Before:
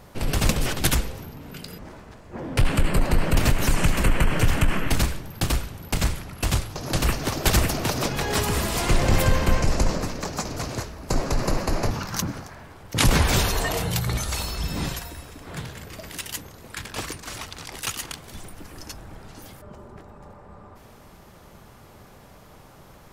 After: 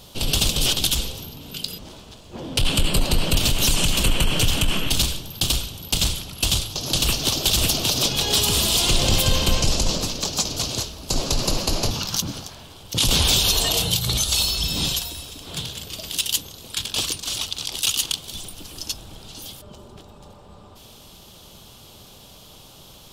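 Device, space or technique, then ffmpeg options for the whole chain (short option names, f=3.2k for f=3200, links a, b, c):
over-bright horn tweeter: -af "highshelf=f=2.5k:t=q:w=3:g=9,alimiter=limit=-7.5dB:level=0:latency=1:release=84"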